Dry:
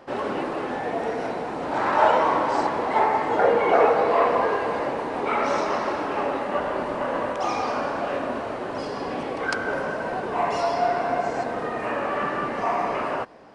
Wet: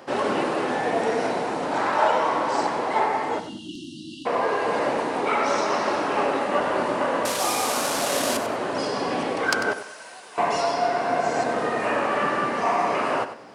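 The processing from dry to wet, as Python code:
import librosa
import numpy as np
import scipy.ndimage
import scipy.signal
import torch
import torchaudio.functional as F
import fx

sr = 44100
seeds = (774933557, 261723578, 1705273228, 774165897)

y = fx.delta_mod(x, sr, bps=64000, step_db=-23.5, at=(7.25, 8.37))
y = scipy.signal.sosfilt(scipy.signal.butter(2, 110.0, 'highpass', fs=sr, output='sos'), y)
y = fx.high_shelf(y, sr, hz=4300.0, db=10.0)
y = fx.rider(y, sr, range_db=3, speed_s=0.5)
y = np.clip(y, -10.0 ** (-10.0 / 20.0), 10.0 ** (-10.0 / 20.0))
y = fx.brickwall_bandstop(y, sr, low_hz=350.0, high_hz=2700.0, at=(3.38, 4.25), fade=0.02)
y = fx.pre_emphasis(y, sr, coefficient=0.97, at=(9.73, 10.38))
y = fx.echo_feedback(y, sr, ms=96, feedback_pct=26, wet_db=-11.5)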